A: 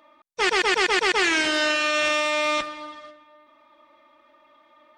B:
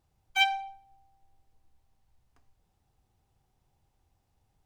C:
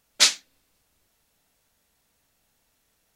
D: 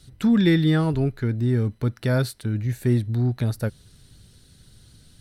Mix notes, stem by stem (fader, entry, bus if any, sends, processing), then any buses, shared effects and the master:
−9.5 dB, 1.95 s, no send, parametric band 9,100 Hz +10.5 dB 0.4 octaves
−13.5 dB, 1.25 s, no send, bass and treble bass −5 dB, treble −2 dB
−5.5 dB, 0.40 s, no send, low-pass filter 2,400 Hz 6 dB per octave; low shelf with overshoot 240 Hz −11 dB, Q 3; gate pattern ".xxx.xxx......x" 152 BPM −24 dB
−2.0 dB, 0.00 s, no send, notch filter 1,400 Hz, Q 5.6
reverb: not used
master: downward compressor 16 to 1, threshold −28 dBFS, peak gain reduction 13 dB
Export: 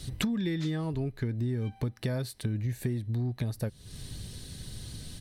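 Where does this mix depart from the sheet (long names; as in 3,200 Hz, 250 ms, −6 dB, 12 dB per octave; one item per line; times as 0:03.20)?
stem A: muted
stem D −2.0 dB → +9.5 dB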